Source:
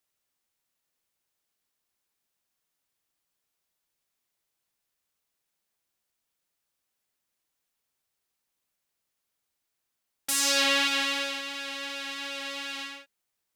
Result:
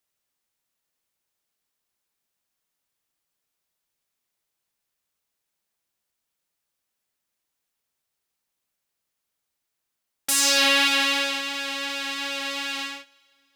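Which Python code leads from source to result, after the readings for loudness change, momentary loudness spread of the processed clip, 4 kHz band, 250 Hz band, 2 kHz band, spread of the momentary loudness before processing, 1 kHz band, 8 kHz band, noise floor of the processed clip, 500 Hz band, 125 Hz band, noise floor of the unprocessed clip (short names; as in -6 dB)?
+5.5 dB, 14 LU, +5.5 dB, +5.0 dB, +5.5 dB, 15 LU, +5.5 dB, +5.0 dB, -82 dBFS, +4.0 dB, n/a, -82 dBFS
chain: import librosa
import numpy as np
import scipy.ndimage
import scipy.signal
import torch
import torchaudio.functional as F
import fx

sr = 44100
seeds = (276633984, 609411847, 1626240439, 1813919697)

y = fx.leveller(x, sr, passes=1)
y = fx.rev_double_slope(y, sr, seeds[0], early_s=0.25, late_s=3.4, knee_db=-18, drr_db=19.0)
y = F.gain(torch.from_numpy(y), 2.5).numpy()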